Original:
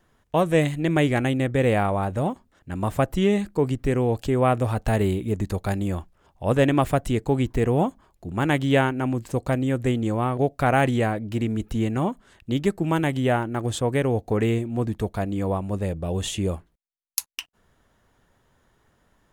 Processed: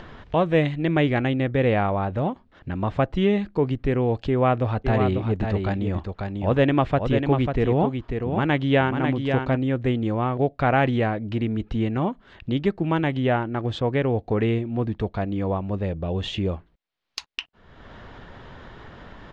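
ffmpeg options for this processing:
ffmpeg -i in.wav -filter_complex "[0:a]asplit=3[link_01][link_02][link_03];[link_01]afade=type=out:start_time=4.84:duration=0.02[link_04];[link_02]aecho=1:1:544:0.501,afade=type=in:start_time=4.84:duration=0.02,afade=type=out:start_time=9.55:duration=0.02[link_05];[link_03]afade=type=in:start_time=9.55:duration=0.02[link_06];[link_04][link_05][link_06]amix=inputs=3:normalize=0,lowpass=frequency=4200:width=0.5412,lowpass=frequency=4200:width=1.3066,acompressor=mode=upward:threshold=-24dB:ratio=2.5" out.wav

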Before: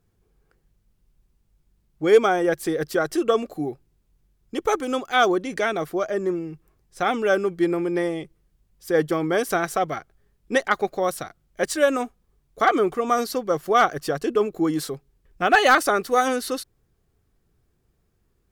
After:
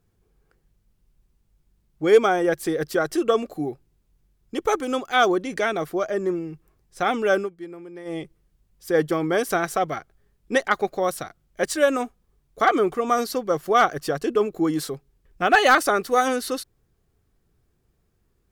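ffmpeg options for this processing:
ffmpeg -i in.wav -filter_complex "[0:a]asplit=3[link_01][link_02][link_03];[link_01]atrim=end=7.5,asetpts=PTS-STARTPTS,afade=type=out:start_time=7.36:duration=0.14:curve=qsin:silence=0.16788[link_04];[link_02]atrim=start=7.5:end=8.05,asetpts=PTS-STARTPTS,volume=-15.5dB[link_05];[link_03]atrim=start=8.05,asetpts=PTS-STARTPTS,afade=type=in:duration=0.14:curve=qsin:silence=0.16788[link_06];[link_04][link_05][link_06]concat=n=3:v=0:a=1" out.wav

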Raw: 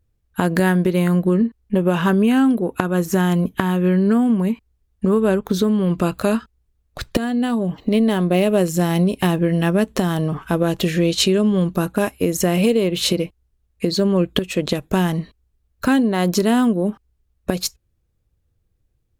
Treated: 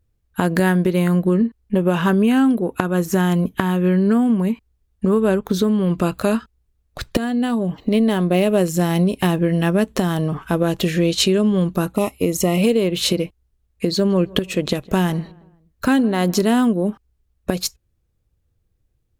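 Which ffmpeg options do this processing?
ffmpeg -i in.wav -filter_complex "[0:a]asettb=1/sr,asplit=3[link_01][link_02][link_03];[link_01]atrim=end=11.944[link_04];[link_02]atrim=start=11.94:end=12.62,asetpts=PTS-STARTPTS,afade=type=in:duration=0.004:curve=qsin,afade=type=out:start_time=0.676:duration=0.004:curve=qsin,asuperstop=centerf=1600:order=12:qfactor=3.3[link_05];[link_03]atrim=start=12.616[link_06];[link_04][link_05]acrossfade=duration=0.004:curve1=hsin:curve2=qsin[link_07];[link_07][link_06]acrossfade=duration=0.004:curve1=qsin:curve2=hsin,asettb=1/sr,asplit=3[link_08][link_09][link_10];[link_08]atrim=end=13.944[link_11];[link_09]atrim=start=13.94:end=16.53,asetpts=PTS-STARTPTS,afade=type=in:duration=0.004:curve=qsin,afade=type=out:start_time=2.586:duration=0.004:curve=qsin,asplit=2[link_12][link_13];[link_13]adelay=159,lowpass=frequency=2000:poles=1,volume=-22dB,asplit=2[link_14][link_15];[link_15]adelay=159,lowpass=frequency=2000:poles=1,volume=0.46,asplit=2[link_16][link_17];[link_17]adelay=159,lowpass=frequency=2000:poles=1,volume=0.46[link_18];[link_12][link_14][link_16][link_18]amix=inputs=4:normalize=0,atrim=end_sample=114219[link_19];[link_10]atrim=start=16.526[link_20];[link_11][link_19]acrossfade=duration=0.004:curve1=hsin:curve2=qsin[link_21];[link_21][link_20]acrossfade=duration=0.004:curve1=qsin:curve2=hsin" out.wav

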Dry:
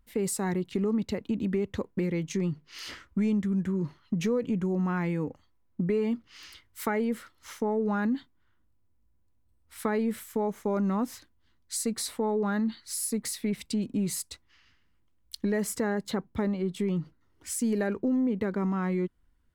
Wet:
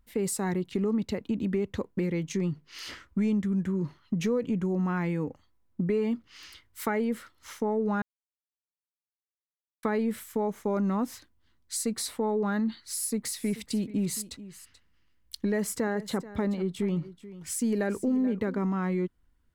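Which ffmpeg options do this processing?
ffmpeg -i in.wav -filter_complex "[0:a]asettb=1/sr,asplit=3[link_01][link_02][link_03];[link_01]atrim=end=12.914[link_04];[link_02]atrim=start=12.91:end=18.59,asetpts=PTS-STARTPTS,afade=type=in:duration=0.004:curve=qsin,afade=type=out:start_time=5.676:duration=0.004:curve=qsin,aecho=1:1:433:0.158,atrim=end_sample=250488[link_05];[link_03]atrim=start=18.586[link_06];[link_04][link_05]acrossfade=duration=0.004:curve1=hsin:curve2=qsin[link_07];[link_07][link_06]acrossfade=duration=0.004:curve1=qsin:curve2=hsin,asplit=3[link_08][link_09][link_10];[link_08]atrim=end=8.02,asetpts=PTS-STARTPTS,afade=type=out:start_time=8.016:duration=0.004:curve=hsin[link_11];[link_09]atrim=start=8.02:end=9.83,asetpts=PTS-STARTPTS,volume=0[link_12];[link_10]atrim=start=9.83,asetpts=PTS-STARTPTS,afade=type=in:duration=0.004:curve=hsin[link_13];[link_11][link_12][link_13]concat=n=3:v=0:a=1" out.wav

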